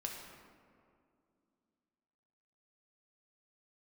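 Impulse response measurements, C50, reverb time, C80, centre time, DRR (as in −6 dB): 2.5 dB, 2.4 s, 4.0 dB, 70 ms, −0.5 dB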